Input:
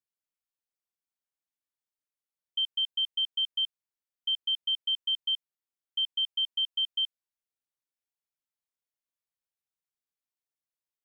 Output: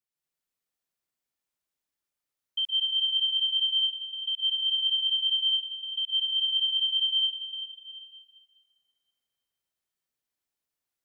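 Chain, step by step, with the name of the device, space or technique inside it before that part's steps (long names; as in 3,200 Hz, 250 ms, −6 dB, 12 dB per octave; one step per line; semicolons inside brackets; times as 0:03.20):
stairwell (convolution reverb RT60 2.7 s, pre-delay 114 ms, DRR −4.5 dB)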